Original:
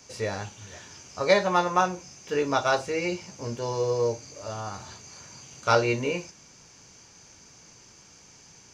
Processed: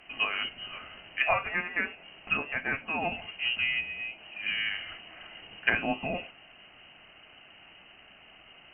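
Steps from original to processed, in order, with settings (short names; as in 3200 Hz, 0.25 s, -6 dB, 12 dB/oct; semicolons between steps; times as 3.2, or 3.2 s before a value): inverted band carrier 3000 Hz; treble ducked by the level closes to 1000 Hz, closed at -23 dBFS; gain +3.5 dB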